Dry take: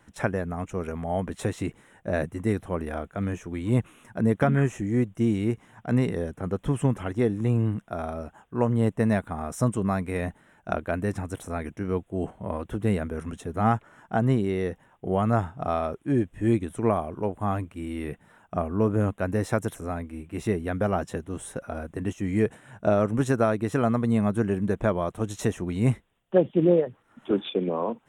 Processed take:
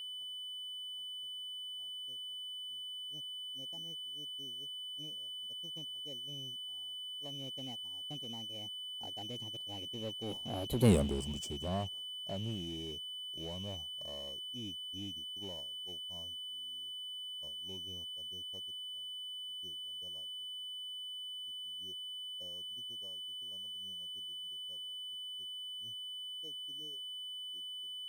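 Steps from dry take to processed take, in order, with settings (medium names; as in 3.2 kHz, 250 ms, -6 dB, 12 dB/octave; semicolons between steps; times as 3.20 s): Doppler pass-by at 10.91 s, 54 m/s, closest 4.7 m; level-controlled noise filter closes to 790 Hz, open at -46.5 dBFS; expander -57 dBFS; Butterworth band-stop 1.5 kHz, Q 0.85; treble shelf 3.4 kHz +12 dB; whistle 3 kHz -51 dBFS; power-law waveshaper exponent 0.7; trim -2 dB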